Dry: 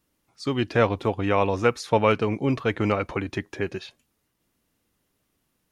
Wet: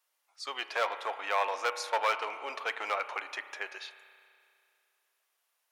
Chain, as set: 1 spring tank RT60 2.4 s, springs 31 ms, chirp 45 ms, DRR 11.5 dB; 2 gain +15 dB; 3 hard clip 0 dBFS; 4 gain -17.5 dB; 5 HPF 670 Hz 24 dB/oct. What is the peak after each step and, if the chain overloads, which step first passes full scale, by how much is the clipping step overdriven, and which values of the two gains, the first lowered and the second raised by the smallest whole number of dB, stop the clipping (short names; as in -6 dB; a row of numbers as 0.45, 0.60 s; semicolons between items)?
-5.5, +9.5, 0.0, -17.5, -14.5 dBFS; step 2, 9.5 dB; step 2 +5 dB, step 4 -7.5 dB